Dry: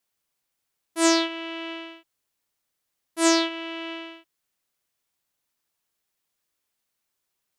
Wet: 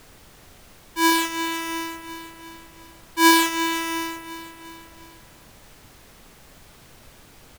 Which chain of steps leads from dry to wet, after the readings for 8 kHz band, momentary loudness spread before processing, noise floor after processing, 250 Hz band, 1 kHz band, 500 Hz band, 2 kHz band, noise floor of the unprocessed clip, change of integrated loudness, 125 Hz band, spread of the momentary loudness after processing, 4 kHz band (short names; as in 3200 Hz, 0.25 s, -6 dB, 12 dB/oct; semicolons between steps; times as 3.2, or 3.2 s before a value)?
+2.0 dB, 19 LU, -50 dBFS, +2.0 dB, +9.5 dB, -2.0 dB, +8.0 dB, -80 dBFS, +3.0 dB, n/a, 22 LU, +3.5 dB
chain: half-waves squared off; Chebyshev high-pass 630 Hz, order 2; on a send: feedback echo 0.352 s, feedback 50%, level -15 dB; on the sum: vocal rider within 4 dB 2 s; in parallel at -7 dB: overloaded stage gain 19.5 dB; on the sum: added noise pink -48 dBFS; gain -1 dB